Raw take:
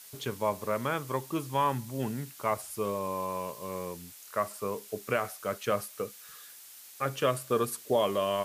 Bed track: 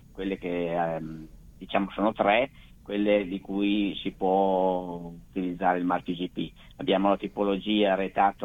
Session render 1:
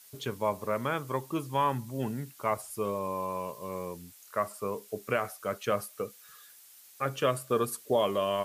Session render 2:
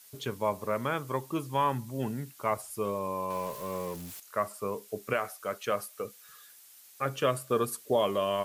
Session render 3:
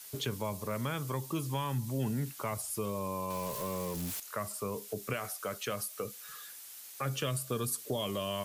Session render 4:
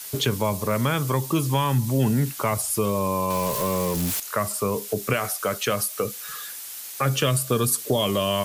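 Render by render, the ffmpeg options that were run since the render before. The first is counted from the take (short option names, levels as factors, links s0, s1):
-af "afftdn=nr=6:nf=-50"
-filter_complex "[0:a]asettb=1/sr,asplit=3[s0][s1][s2];[s0]atrim=end=3.304[s3];[s1]atrim=start=3.3:end=4.2,asetpts=PTS-STARTPTS,afade=t=in:d=0.004:c=qsin,afade=t=out:st=0.896:d=0.004:c=qsin,aeval=exprs='val(0)+0.5*0.00891*sgn(val(0))':c=same[s4];[s2]atrim=start=4.196[s5];[s3][s4]acrossfade=d=0.004:c1=hsin:c2=qsin[s6];[s6][s5]acrossfade=d=0.004:c1=qsin:c2=hsin,asettb=1/sr,asplit=3[s7][s8][s9];[s7]atrim=end=5.134[s10];[s8]atrim=start=5.13:end=6.05,asetpts=PTS-STARTPTS,afade=t=in:d=0.004:c=qsin,afade=t=out:st=0.916:d=0.004:c=qsin,lowshelf=f=230:g=-8.5[s11];[s9]atrim=start=6.046[s12];[s10][s11]acrossfade=d=0.004:c1=hsin:c2=qsin[s13];[s13][s12]acrossfade=d=0.004:c1=qsin:c2=hsin"
-filter_complex "[0:a]acrossover=split=190|3000[s0][s1][s2];[s1]acompressor=threshold=0.0112:ratio=6[s3];[s0][s3][s2]amix=inputs=3:normalize=0,asplit=2[s4][s5];[s5]alimiter=level_in=3.35:limit=0.0631:level=0:latency=1,volume=0.299,volume=1[s6];[s4][s6]amix=inputs=2:normalize=0"
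-af "volume=3.98"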